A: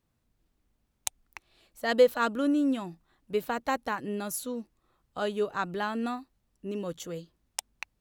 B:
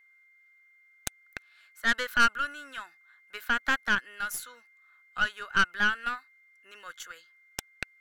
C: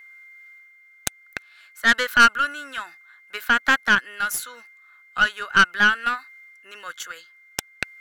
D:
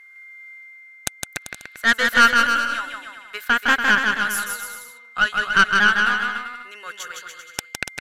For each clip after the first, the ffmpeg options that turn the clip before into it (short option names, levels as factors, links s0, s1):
-af "highpass=f=1500:t=q:w=7.3,aeval=exprs='(tanh(8.91*val(0)+0.7)-tanh(0.7))/8.91':c=same,aeval=exprs='val(0)+0.000891*sin(2*PI*2100*n/s)':c=same,volume=1.33"
-af "lowshelf=f=62:g=-9.5,areverse,acompressor=mode=upward:threshold=0.00355:ratio=2.5,areverse,volume=2.66"
-af "aecho=1:1:160|288|390.4|472.3|537.9:0.631|0.398|0.251|0.158|0.1,aresample=32000,aresample=44100"